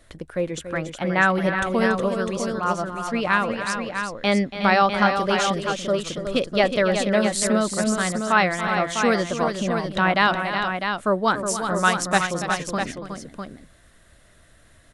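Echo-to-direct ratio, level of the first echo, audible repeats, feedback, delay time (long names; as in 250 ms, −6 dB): −3.5 dB, −11.5 dB, 3, repeats not evenly spaced, 284 ms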